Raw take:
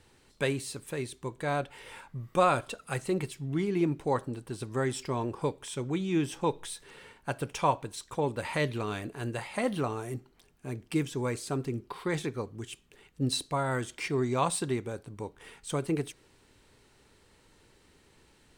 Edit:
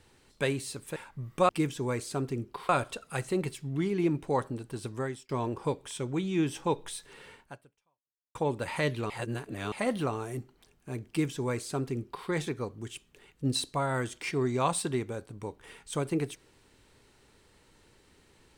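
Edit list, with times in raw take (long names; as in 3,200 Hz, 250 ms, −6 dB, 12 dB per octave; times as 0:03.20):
0:00.96–0:01.93: remove
0:04.67–0:05.06: fade out
0:07.18–0:08.12: fade out exponential
0:08.87–0:09.49: reverse
0:10.85–0:12.05: duplicate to 0:02.46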